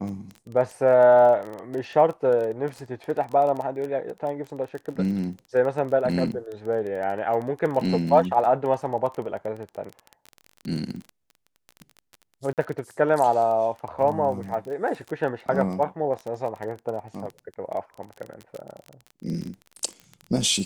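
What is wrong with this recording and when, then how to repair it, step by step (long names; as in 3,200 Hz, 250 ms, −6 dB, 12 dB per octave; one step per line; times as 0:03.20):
surface crackle 22 per second −30 dBFS
0:12.53–0:12.58: drop-out 48 ms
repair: click removal
repair the gap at 0:12.53, 48 ms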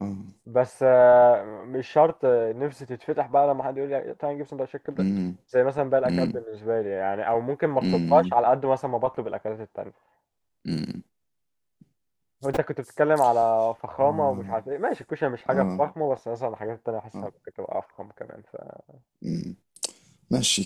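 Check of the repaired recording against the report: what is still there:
none of them is left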